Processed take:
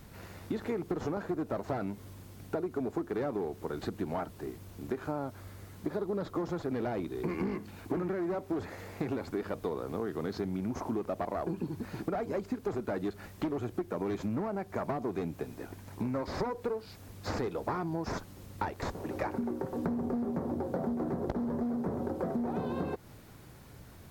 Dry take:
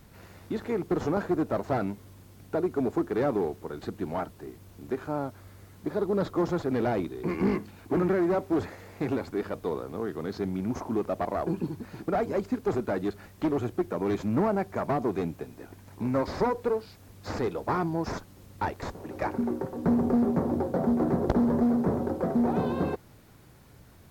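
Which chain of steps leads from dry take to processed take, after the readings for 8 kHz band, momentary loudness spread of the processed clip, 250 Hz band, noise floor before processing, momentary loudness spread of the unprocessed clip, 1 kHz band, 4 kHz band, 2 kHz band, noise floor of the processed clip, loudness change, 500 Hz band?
n/a, 10 LU, -6.5 dB, -53 dBFS, 11 LU, -6.0 dB, -2.5 dB, -5.0 dB, -52 dBFS, -6.5 dB, -6.0 dB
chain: compressor 10:1, threshold -32 dBFS, peak gain reduction 13 dB; gain +2 dB

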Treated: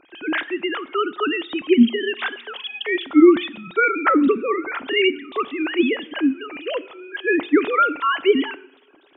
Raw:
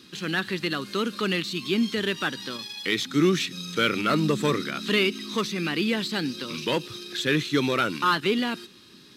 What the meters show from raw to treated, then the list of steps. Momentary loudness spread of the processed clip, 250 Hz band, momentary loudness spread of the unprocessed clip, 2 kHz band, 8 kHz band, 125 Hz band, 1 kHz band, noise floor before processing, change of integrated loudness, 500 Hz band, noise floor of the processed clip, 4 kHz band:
12 LU, +7.5 dB, 7 LU, +4.5 dB, under -40 dB, under -10 dB, +6.0 dB, -51 dBFS, +5.5 dB, +7.0 dB, -54 dBFS, -1.0 dB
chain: sine-wave speech; two-slope reverb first 0.69 s, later 2.5 s, from -22 dB, DRR 16.5 dB; gain +6 dB

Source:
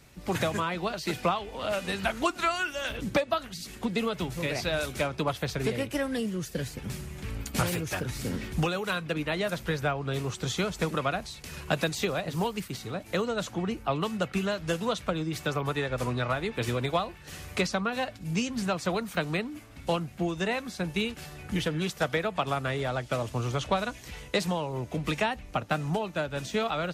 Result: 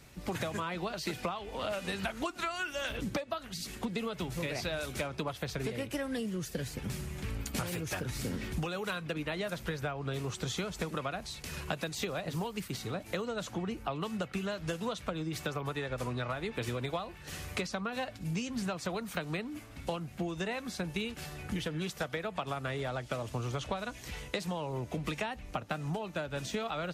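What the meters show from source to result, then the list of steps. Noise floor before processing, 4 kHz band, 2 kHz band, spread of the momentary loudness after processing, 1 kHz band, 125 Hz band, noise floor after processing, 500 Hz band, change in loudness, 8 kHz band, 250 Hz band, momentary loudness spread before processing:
-47 dBFS, -5.5 dB, -6.0 dB, 3 LU, -7.0 dB, -5.5 dB, -49 dBFS, -6.5 dB, -6.0 dB, -4.0 dB, -5.5 dB, 5 LU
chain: compressor, threshold -32 dBFS, peak gain reduction 11.5 dB

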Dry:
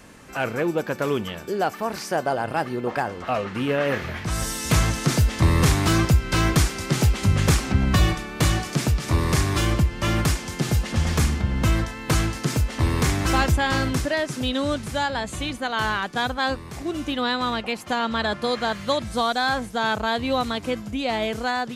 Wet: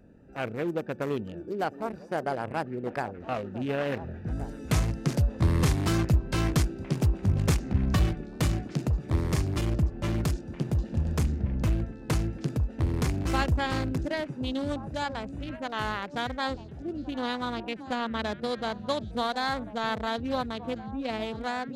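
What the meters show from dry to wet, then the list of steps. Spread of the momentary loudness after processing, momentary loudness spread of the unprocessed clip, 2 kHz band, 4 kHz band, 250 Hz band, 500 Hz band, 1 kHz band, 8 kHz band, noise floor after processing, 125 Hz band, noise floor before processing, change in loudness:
8 LU, 7 LU, -10.0 dB, -10.0 dB, -5.0 dB, -6.5 dB, -7.5 dB, -12.0 dB, -44 dBFS, -5.0 dB, -38 dBFS, -6.5 dB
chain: Wiener smoothing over 41 samples; wow and flutter 26 cents; delay with a stepping band-pass 0.711 s, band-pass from 280 Hz, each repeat 1.4 oct, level -10 dB; gain -5 dB

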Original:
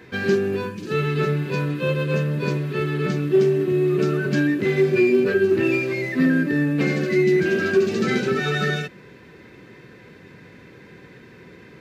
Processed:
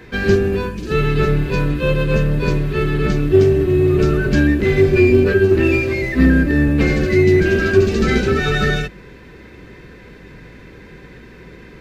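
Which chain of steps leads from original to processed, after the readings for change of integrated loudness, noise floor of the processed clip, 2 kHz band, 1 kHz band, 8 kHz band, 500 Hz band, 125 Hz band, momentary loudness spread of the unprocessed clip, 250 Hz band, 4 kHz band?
+5.5 dB, -41 dBFS, +4.5 dB, +4.5 dB, n/a, +4.5 dB, +7.5 dB, 6 LU, +5.0 dB, +4.5 dB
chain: octaver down 2 oct, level -1 dB; gain +4.5 dB

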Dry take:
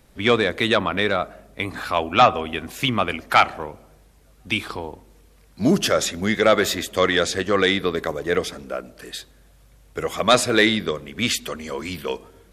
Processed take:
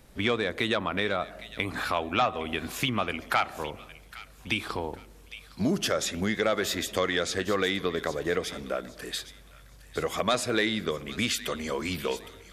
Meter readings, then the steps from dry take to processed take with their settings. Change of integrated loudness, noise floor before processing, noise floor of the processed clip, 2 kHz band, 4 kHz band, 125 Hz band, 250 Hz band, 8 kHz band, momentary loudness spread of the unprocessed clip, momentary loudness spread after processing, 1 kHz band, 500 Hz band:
-8.0 dB, -53 dBFS, -52 dBFS, -7.0 dB, -7.0 dB, -6.0 dB, -7.0 dB, -6.0 dB, 15 LU, 12 LU, -9.0 dB, -8.0 dB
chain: compressor 2.5:1, threshold -27 dBFS, peak gain reduction 12 dB; on a send: thin delay 0.811 s, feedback 31%, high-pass 1900 Hz, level -13 dB

